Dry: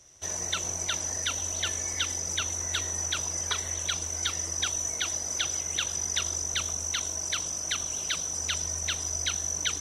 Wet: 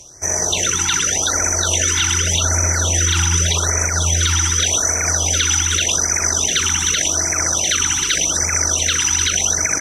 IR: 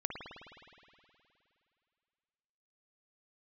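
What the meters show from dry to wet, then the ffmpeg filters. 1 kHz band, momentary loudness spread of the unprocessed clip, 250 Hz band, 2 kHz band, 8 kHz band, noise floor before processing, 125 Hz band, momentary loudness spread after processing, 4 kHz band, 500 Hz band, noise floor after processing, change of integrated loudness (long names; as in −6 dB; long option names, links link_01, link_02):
+14.5 dB, 2 LU, +16.5 dB, +14.5 dB, +13.5 dB, −35 dBFS, +19.5 dB, 1 LU, +11.5 dB, +15.5 dB, −21 dBFS, +13.5 dB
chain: -filter_complex "[1:a]atrim=start_sample=2205,afade=type=out:start_time=0.36:duration=0.01,atrim=end_sample=16317,asetrate=38808,aresample=44100[link_01];[0:a][link_01]afir=irnorm=-1:irlink=0,areverse,acompressor=mode=upward:threshold=-40dB:ratio=2.5,areverse,bandreject=frequency=1100:width=13,asplit=2[link_02][link_03];[link_03]aecho=0:1:1082:0.376[link_04];[link_02][link_04]amix=inputs=2:normalize=0,alimiter=level_in=19.5dB:limit=-1dB:release=50:level=0:latency=1,afftfilt=real='re*(1-between(b*sr/1024,520*pow(3700/520,0.5+0.5*sin(2*PI*0.85*pts/sr))/1.41,520*pow(3700/520,0.5+0.5*sin(2*PI*0.85*pts/sr))*1.41))':imag='im*(1-between(b*sr/1024,520*pow(3700/520,0.5+0.5*sin(2*PI*0.85*pts/sr))/1.41,520*pow(3700/520,0.5+0.5*sin(2*PI*0.85*pts/sr))*1.41))':win_size=1024:overlap=0.75,volume=-5.5dB"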